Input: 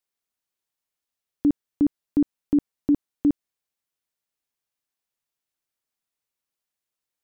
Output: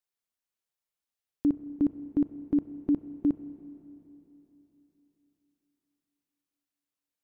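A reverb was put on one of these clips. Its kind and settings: spring tank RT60 3.5 s, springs 31/42 ms, chirp 35 ms, DRR 12.5 dB; gain -5 dB

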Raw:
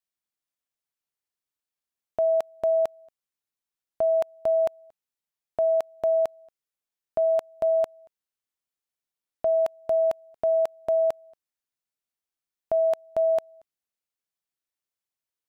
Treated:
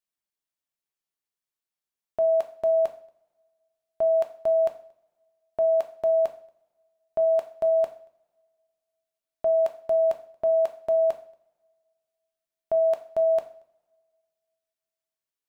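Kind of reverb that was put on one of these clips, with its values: two-slope reverb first 0.44 s, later 2 s, from -26 dB, DRR 6 dB; gain -2.5 dB

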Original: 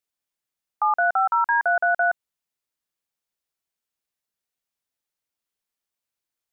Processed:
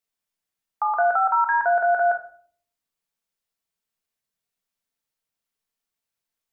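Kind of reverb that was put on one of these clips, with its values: shoebox room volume 510 m³, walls furnished, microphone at 1.6 m; gain -1 dB

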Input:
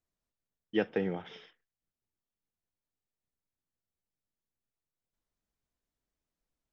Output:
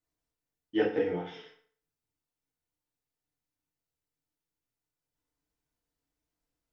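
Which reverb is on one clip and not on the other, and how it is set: FDN reverb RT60 0.51 s, low-frequency decay 0.9×, high-frequency decay 0.8×, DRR -6 dB; gain -5 dB

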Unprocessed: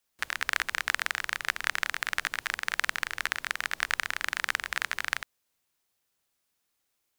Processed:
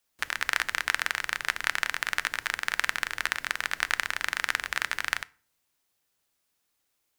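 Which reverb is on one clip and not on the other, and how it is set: FDN reverb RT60 0.43 s, low-frequency decay 1.35×, high-frequency decay 0.75×, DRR 16.5 dB; gain +1.5 dB

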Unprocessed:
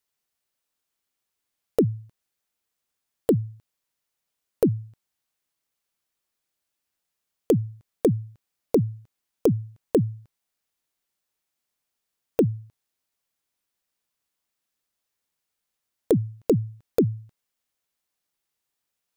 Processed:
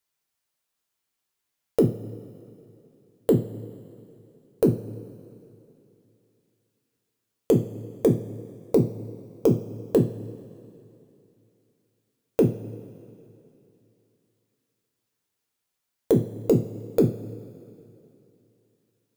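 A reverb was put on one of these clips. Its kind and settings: two-slope reverb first 0.35 s, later 2.9 s, from -18 dB, DRR 2 dB; gain -1 dB

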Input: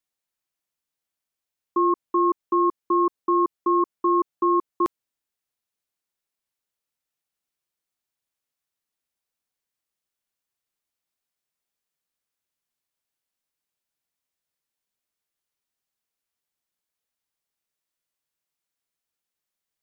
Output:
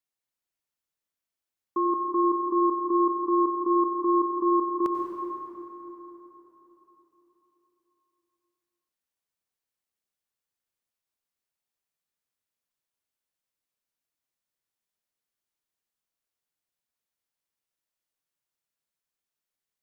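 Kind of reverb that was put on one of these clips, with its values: plate-style reverb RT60 3.9 s, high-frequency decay 0.55×, pre-delay 80 ms, DRR 2 dB; gain -5 dB

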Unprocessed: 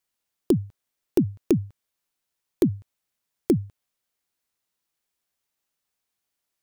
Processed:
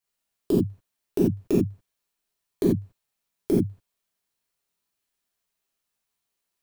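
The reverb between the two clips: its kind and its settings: non-linear reverb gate 0.11 s flat, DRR -6.5 dB; gain -7 dB

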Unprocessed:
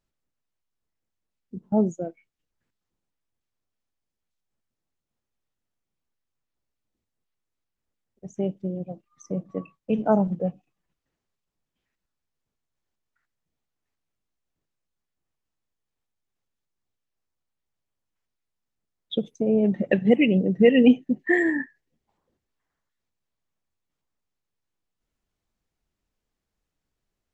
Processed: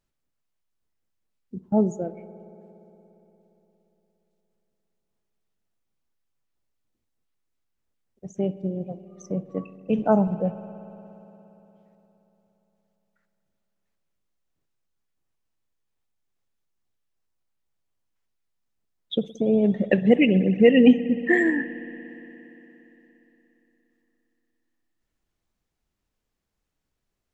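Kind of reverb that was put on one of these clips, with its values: spring tank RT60 3.7 s, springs 58 ms, chirp 80 ms, DRR 13.5 dB; gain +1 dB

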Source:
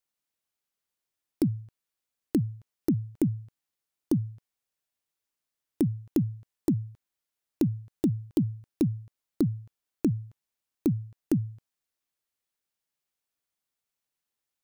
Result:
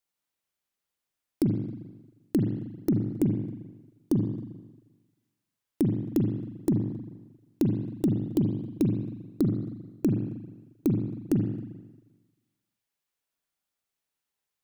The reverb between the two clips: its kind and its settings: spring tank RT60 1.2 s, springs 39/44 ms, chirp 35 ms, DRR 2.5 dB

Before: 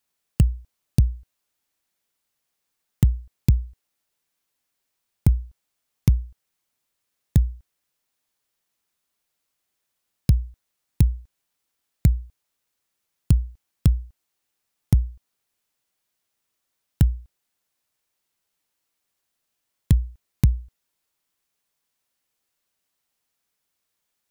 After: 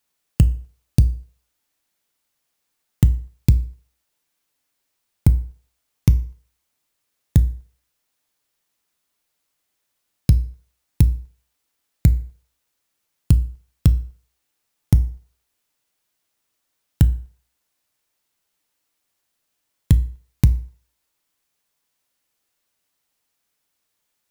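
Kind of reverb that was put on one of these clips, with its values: FDN reverb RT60 0.53 s, low-frequency decay 0.75×, high-frequency decay 0.8×, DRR 12 dB; gain +3 dB

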